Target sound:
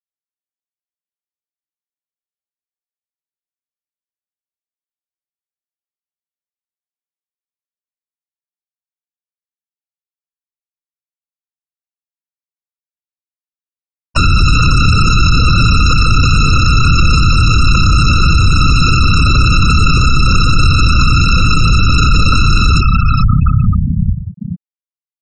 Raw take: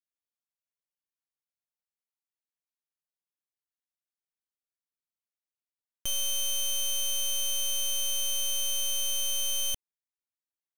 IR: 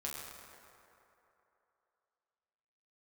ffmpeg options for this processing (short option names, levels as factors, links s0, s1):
-filter_complex "[0:a]dynaudnorm=f=200:g=9:m=6.68,asetrate=18846,aresample=44100,asplit=2[s0][s1];[s1]adelay=31,volume=0.282[s2];[s0][s2]amix=inputs=2:normalize=0,asplit=2[s3][s4];[1:a]atrim=start_sample=2205[s5];[s4][s5]afir=irnorm=-1:irlink=0,volume=0.188[s6];[s3][s6]amix=inputs=2:normalize=0,acrossover=split=490[s7][s8];[s8]acompressor=threshold=0.0891:ratio=10[s9];[s7][s9]amix=inputs=2:normalize=0,asplit=6[s10][s11][s12][s13][s14][s15];[s11]adelay=430,afreqshift=-33,volume=0.316[s16];[s12]adelay=860,afreqshift=-66,volume=0.155[s17];[s13]adelay=1290,afreqshift=-99,volume=0.0759[s18];[s14]adelay=1720,afreqshift=-132,volume=0.0372[s19];[s15]adelay=2150,afreqshift=-165,volume=0.0182[s20];[s10][s16][s17][s18][s19][s20]amix=inputs=6:normalize=0,afftfilt=real='hypot(re,im)*cos(2*PI*random(0))':imag='hypot(re,im)*sin(2*PI*random(1))':win_size=512:overlap=0.75,afftfilt=real='re*gte(hypot(re,im),0.0398)':imag='im*gte(hypot(re,im),0.0398)':win_size=1024:overlap=0.75,alimiter=level_in=31.6:limit=0.891:release=50:level=0:latency=1,volume=0.891"